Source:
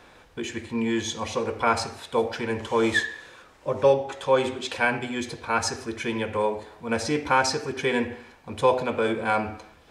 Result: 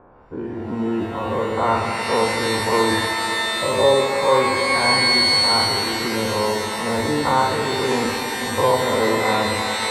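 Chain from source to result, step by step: spectral dilation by 0.12 s; Chebyshev low-pass 1100 Hz, order 3; shimmer reverb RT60 3.9 s, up +12 st, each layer -2 dB, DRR 4 dB

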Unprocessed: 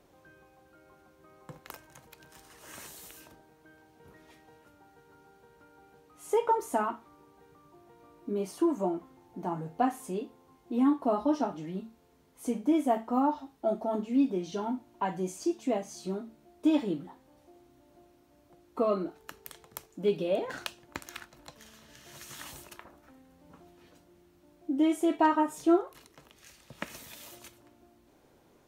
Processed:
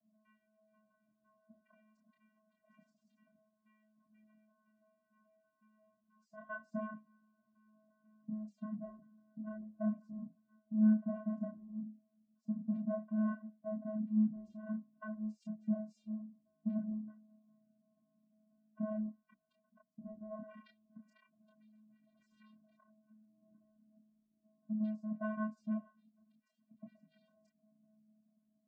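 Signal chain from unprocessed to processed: in parallel at -7.5 dB: hard clip -29.5 dBFS, distortion -6 dB; on the sum: loudest bins only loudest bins 8; vocoder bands 8, square 215 Hz; chorus voices 4, 0.12 Hz, delay 27 ms, depth 4.6 ms; gain -6.5 dB

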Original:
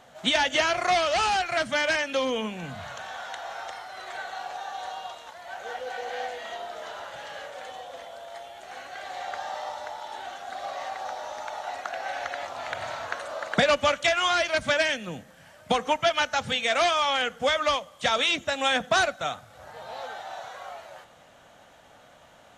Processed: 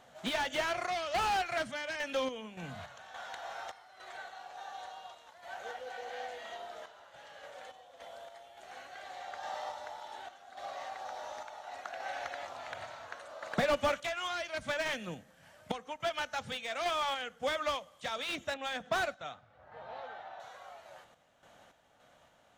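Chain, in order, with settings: 18.54–20.4 low-pass opened by the level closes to 1900 Hz, open at -18.5 dBFS; random-step tremolo, depth 75%; slew limiter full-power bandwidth 110 Hz; gain -5.5 dB

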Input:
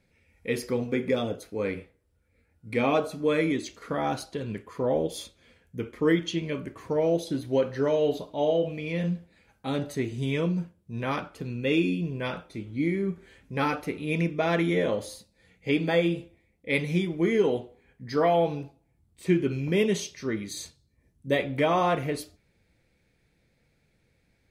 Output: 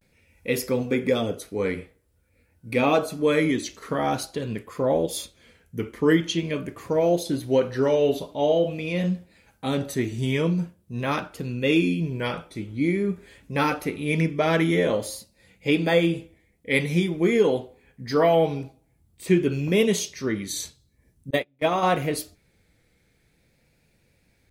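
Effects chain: 21.29–21.83 gate -22 dBFS, range -37 dB; vibrato 0.47 Hz 67 cents; high shelf 7500 Hz +8.5 dB; gain +3.5 dB

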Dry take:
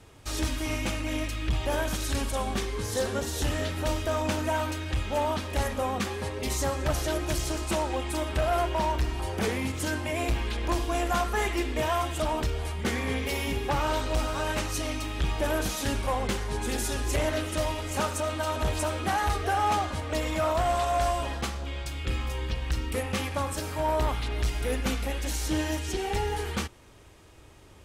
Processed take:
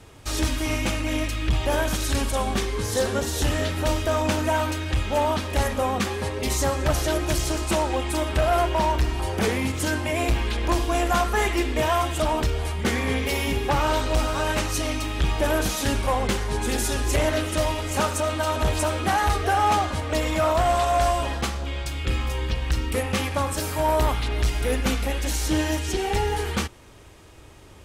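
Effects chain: 23.59–24.12 high shelf 6500 Hz -> 9700 Hz +8 dB; gain +5 dB

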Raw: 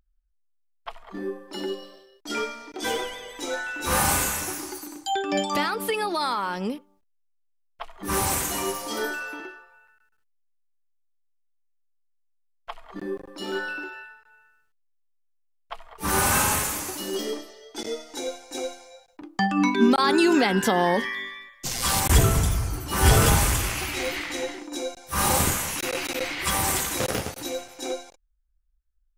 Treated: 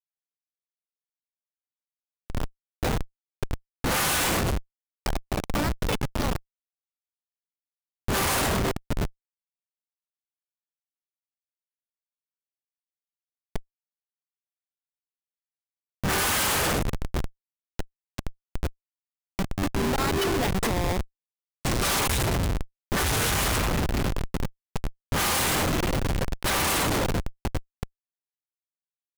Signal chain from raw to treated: formant shift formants +2 st; high shelf 2100 Hz +12 dB; Schmitt trigger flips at -14.5 dBFS; gain -2.5 dB

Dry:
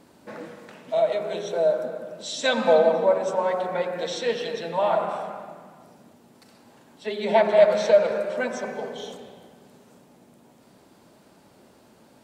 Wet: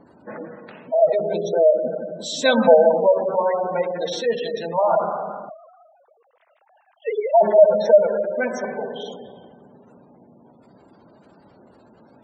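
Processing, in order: 5.49–7.41 sine-wave speech; spectral gate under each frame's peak -20 dB strong; 1.01–2.75 low shelf 380 Hz +7 dB; gain +4 dB

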